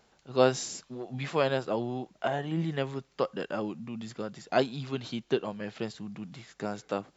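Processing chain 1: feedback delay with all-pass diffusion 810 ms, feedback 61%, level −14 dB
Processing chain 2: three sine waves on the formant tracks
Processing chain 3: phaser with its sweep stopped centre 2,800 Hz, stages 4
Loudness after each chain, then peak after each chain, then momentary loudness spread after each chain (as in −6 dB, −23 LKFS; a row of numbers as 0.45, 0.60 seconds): −32.0, −32.0, −34.5 LKFS; −8.0, −12.5, −11.5 dBFS; 12, 14, 12 LU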